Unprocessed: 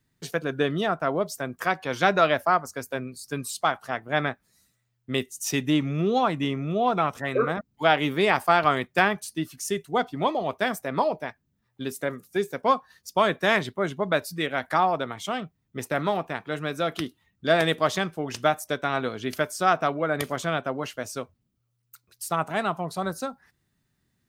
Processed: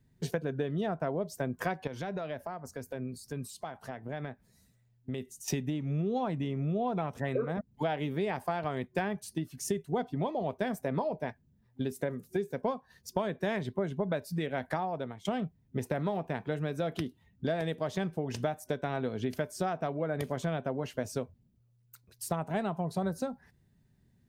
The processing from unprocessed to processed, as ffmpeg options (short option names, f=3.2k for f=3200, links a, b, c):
-filter_complex "[0:a]asettb=1/sr,asplit=3[a][b][c];[a]atrim=end=1.874[d];[b]atrim=start=1.87:end=5.48,asetpts=PTS-STARTPTS,afade=t=in:d=0.004:c=qsin,afade=t=out:st=3.606:d=0.004:c=qsin,acompressor=threshold=-41dB:ratio=3:attack=3.2:release=140:knee=1:detection=peak[e];[c]atrim=start=5.476[f];[d][e]acrossfade=d=0.004:c1=hsin:c2=qsin[g];[g][f]acrossfade=d=0.004:c1=qsin:c2=hsin,asplit=2[h][i];[h]atrim=end=15.25,asetpts=PTS-STARTPTS,afade=t=out:st=14.63:d=0.62:silence=0.133352[j];[i]atrim=start=15.25,asetpts=PTS-STARTPTS,afade=t=in:d=0.004:c=hsin:silence=0.133352[k];[j][k]concat=n=2:v=0:a=1,tiltshelf=f=720:g=6.5,acompressor=threshold=-29dB:ratio=12,superequalizer=6b=0.631:10b=0.562,volume=1.5dB"